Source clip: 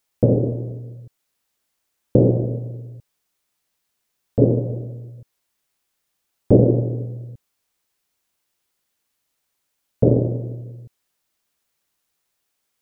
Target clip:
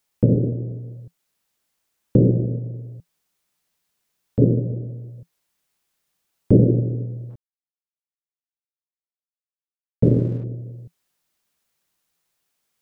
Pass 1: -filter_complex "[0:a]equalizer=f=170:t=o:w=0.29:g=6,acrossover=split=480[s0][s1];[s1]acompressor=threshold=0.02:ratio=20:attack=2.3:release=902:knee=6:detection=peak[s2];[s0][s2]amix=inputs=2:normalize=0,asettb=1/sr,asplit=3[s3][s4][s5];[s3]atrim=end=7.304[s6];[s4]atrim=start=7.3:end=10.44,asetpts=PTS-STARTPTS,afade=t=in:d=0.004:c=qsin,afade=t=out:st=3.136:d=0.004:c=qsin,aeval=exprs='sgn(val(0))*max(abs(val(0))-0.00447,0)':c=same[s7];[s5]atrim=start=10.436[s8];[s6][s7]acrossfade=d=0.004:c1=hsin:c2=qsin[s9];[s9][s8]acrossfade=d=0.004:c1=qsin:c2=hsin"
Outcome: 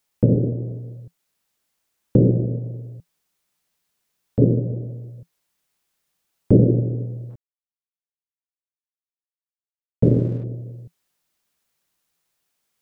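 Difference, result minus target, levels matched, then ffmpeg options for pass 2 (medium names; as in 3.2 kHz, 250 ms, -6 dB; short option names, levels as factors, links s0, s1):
compression: peak gain reduction -5.5 dB
-filter_complex "[0:a]equalizer=f=170:t=o:w=0.29:g=6,acrossover=split=480[s0][s1];[s1]acompressor=threshold=0.01:ratio=20:attack=2.3:release=902:knee=6:detection=peak[s2];[s0][s2]amix=inputs=2:normalize=0,asettb=1/sr,asplit=3[s3][s4][s5];[s3]atrim=end=7.304[s6];[s4]atrim=start=7.3:end=10.44,asetpts=PTS-STARTPTS,afade=t=in:d=0.004:c=qsin,afade=t=out:st=3.136:d=0.004:c=qsin,aeval=exprs='sgn(val(0))*max(abs(val(0))-0.00447,0)':c=same[s7];[s5]atrim=start=10.436[s8];[s6][s7]acrossfade=d=0.004:c1=hsin:c2=qsin[s9];[s9][s8]acrossfade=d=0.004:c1=qsin:c2=hsin"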